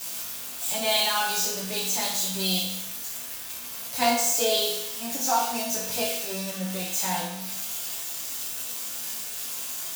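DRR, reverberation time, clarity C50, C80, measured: -6.5 dB, 0.80 s, 3.0 dB, 5.5 dB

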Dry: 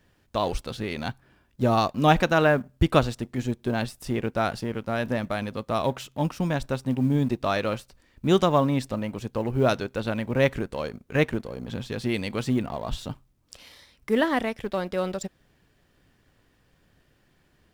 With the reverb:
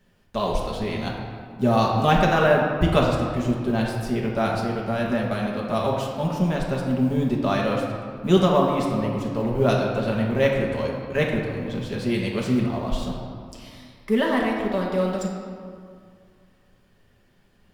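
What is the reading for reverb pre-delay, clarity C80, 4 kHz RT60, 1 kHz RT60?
5 ms, 3.5 dB, 1.2 s, 2.2 s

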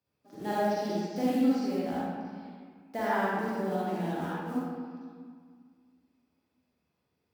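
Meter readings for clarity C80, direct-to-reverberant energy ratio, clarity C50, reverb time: -3.0 dB, -9.0 dB, -6.5 dB, 1.9 s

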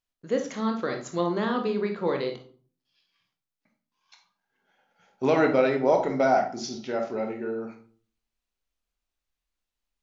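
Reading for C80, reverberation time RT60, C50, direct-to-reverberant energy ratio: 14.0 dB, 0.45 s, 8.0 dB, 3.5 dB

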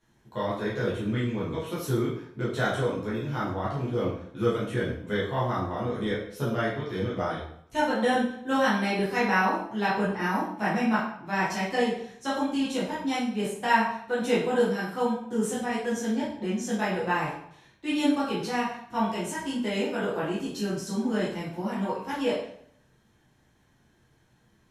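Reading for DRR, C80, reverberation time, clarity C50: -9.5 dB, 7.0 dB, 0.65 s, 3.0 dB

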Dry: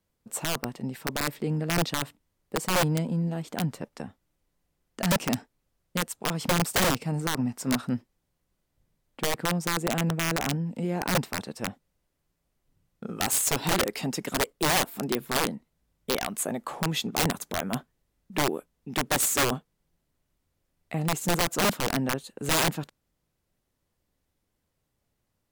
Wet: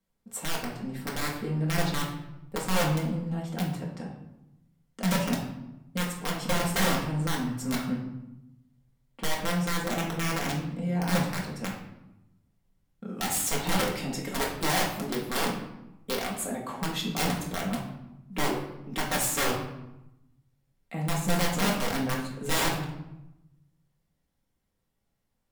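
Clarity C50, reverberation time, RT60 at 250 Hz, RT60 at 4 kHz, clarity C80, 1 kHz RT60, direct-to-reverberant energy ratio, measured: 5.0 dB, 0.95 s, 1.2 s, 0.60 s, 8.0 dB, 0.90 s, -3.5 dB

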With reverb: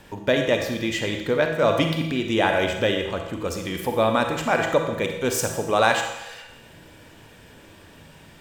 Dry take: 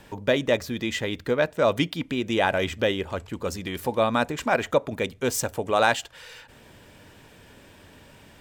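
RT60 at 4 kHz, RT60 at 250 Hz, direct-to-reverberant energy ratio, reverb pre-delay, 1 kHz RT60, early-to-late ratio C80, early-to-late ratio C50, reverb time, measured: 0.95 s, 1.0 s, 3.5 dB, 33 ms, 0.95 s, 7.0 dB, 5.0 dB, 1.0 s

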